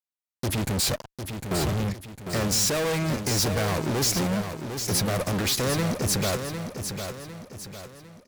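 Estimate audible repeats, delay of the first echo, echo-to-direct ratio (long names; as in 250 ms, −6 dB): 4, 753 ms, −6.5 dB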